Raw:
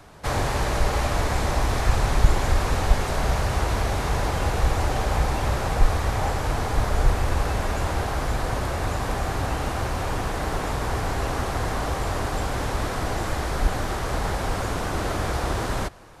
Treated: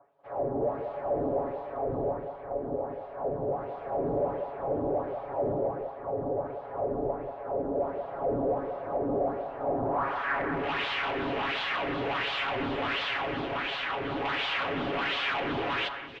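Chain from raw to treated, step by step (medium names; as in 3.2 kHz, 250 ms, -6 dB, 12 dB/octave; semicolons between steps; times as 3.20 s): comb 7.2 ms, depth 73%; level rider gain up to 11.5 dB; wah-wah 1.4 Hz 270–3600 Hz, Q 2.2; hard clipper -26 dBFS, distortion -9 dB; low-pass sweep 590 Hz -> 2.9 kHz, 9.63–10.66 s; echo whose repeats swap between lows and highs 187 ms, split 2.2 kHz, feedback 58%, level -7 dB; trim -4 dB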